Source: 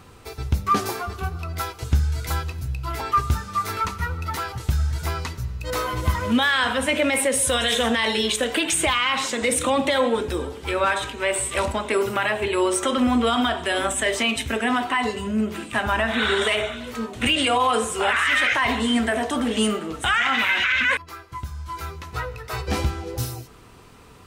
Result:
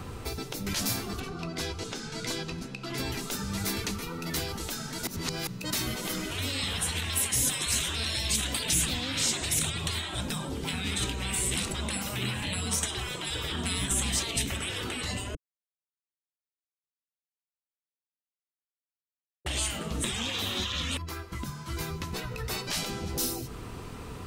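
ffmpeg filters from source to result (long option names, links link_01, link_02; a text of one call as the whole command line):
ffmpeg -i in.wav -filter_complex "[0:a]asettb=1/sr,asplit=3[link_01][link_02][link_03];[link_01]atrim=end=1.204[link_04];[link_02]atrim=start=1.2:end=2.98,asetpts=PTS-STARTPTS,afade=type=in:duration=0.004:curve=qsin,afade=type=out:start_time=1.776:duration=0.004:curve=qsin,lowpass=6600[link_05];[link_03]atrim=start=2.976[link_06];[link_04][link_05]acrossfade=duration=0.004:curve1=hsin:curve2=qsin[link_07];[link_07][link_06]acrossfade=duration=0.004:curve1=qsin:curve2=hsin,asplit=5[link_08][link_09][link_10][link_11][link_12];[link_08]atrim=end=5.072[link_13];[link_09]atrim=start=5.068:end=5.472,asetpts=PTS-STARTPTS,areverse[link_14];[link_10]atrim=start=5.468:end=15.35,asetpts=PTS-STARTPTS,afade=type=out:start_time=9.878:duration=0.004:curve=hsin[link_15];[link_11]atrim=start=15.35:end=19.46,asetpts=PTS-STARTPTS,volume=0[link_16];[link_12]atrim=start=19.46,asetpts=PTS-STARTPTS,afade=type=in:duration=0.004:curve=hsin[link_17];[link_13][link_14]acrossfade=duration=0.004:curve1=hsin:curve2=hsin[link_18];[link_15][link_16][link_17]concat=n=3:v=0:a=1[link_19];[link_18][link_19]acrossfade=duration=0.004:curve1=hsin:curve2=hsin,afftfilt=real='re*lt(hypot(re,im),0.112)':imag='im*lt(hypot(re,im),0.112)':win_size=1024:overlap=0.75,lowshelf=frequency=490:gain=5.5,acrossover=split=320|3000[link_20][link_21][link_22];[link_21]acompressor=threshold=-46dB:ratio=3[link_23];[link_20][link_23][link_22]amix=inputs=3:normalize=0,volume=4dB" out.wav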